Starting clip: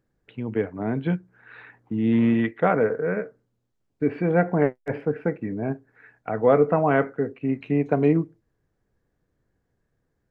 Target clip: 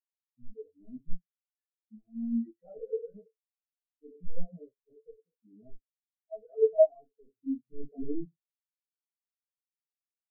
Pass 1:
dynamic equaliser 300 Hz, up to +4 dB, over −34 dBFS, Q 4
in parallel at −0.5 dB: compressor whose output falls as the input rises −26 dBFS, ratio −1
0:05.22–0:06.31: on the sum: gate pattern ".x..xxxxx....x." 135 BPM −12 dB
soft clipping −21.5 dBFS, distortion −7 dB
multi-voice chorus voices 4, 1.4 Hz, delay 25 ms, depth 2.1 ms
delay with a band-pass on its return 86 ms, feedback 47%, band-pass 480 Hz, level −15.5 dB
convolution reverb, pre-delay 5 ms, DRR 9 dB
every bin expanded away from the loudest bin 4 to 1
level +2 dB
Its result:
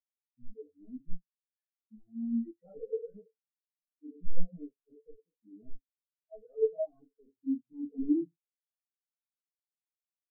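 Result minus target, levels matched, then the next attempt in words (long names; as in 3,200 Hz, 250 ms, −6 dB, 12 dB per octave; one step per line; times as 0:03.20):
250 Hz band +7.5 dB
dynamic equaliser 660 Hz, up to +4 dB, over −34 dBFS, Q 4
in parallel at −0.5 dB: compressor whose output falls as the input rises −26 dBFS, ratio −1
0:05.22–0:06.31: on the sum: gate pattern ".x..xxxxx....x." 135 BPM −12 dB
soft clipping −21.5 dBFS, distortion −7 dB
multi-voice chorus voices 4, 1.4 Hz, delay 25 ms, depth 2.1 ms
delay with a band-pass on its return 86 ms, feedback 47%, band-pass 480 Hz, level −15.5 dB
convolution reverb, pre-delay 5 ms, DRR 9 dB
every bin expanded away from the loudest bin 4 to 1
level +2 dB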